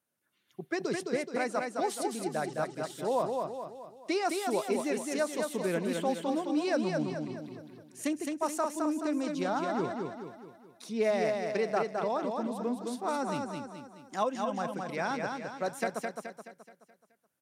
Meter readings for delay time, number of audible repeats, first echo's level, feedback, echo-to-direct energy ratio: 213 ms, 5, −4.0 dB, 47%, −3.0 dB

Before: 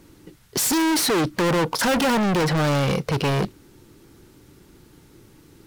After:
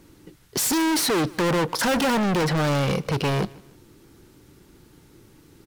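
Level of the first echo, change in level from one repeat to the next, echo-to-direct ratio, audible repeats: −23.0 dB, −9.0 dB, −22.5 dB, 2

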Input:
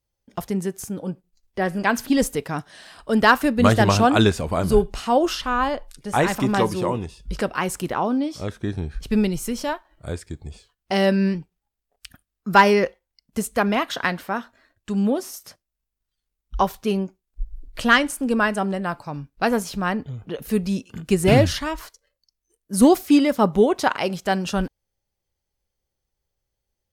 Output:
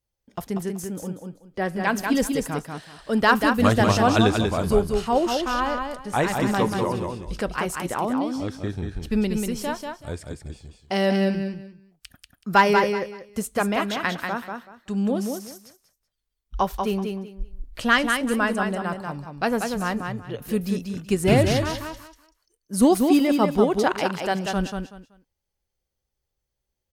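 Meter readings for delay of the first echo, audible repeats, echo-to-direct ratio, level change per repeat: 189 ms, 3, −5.0 dB, −13.0 dB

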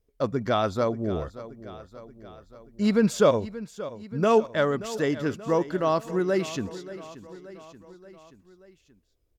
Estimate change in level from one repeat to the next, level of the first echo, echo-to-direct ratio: −4.5 dB, −15.5 dB, −13.5 dB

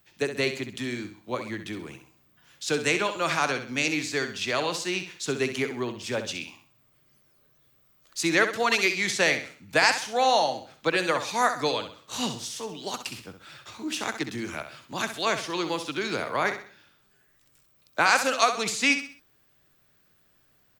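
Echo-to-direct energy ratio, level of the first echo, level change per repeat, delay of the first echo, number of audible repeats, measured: −9.0 dB, −9.5 dB, −8.5 dB, 65 ms, 3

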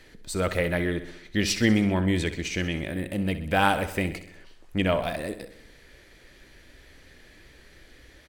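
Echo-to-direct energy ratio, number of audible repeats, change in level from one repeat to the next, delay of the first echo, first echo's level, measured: −11.0 dB, 5, −4.5 dB, 64 ms, −13.0 dB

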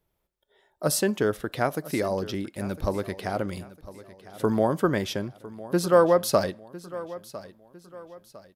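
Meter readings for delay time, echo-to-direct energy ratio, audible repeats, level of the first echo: 1,004 ms, −16.5 dB, 3, −17.0 dB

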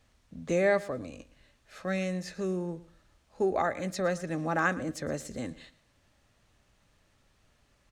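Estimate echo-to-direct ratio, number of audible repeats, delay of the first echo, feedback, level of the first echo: −19.0 dB, 2, 114 ms, 25%, −19.0 dB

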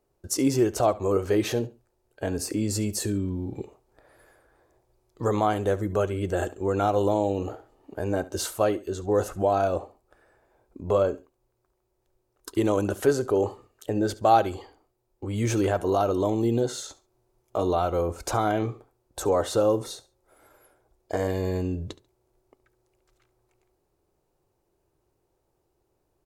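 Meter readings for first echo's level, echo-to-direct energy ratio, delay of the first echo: −18.5 dB, −18.0 dB, 70 ms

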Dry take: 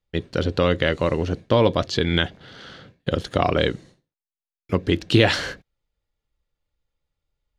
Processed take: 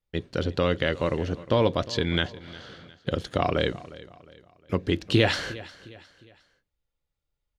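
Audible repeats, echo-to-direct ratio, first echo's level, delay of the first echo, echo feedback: 3, −17.5 dB, −18.5 dB, 357 ms, 41%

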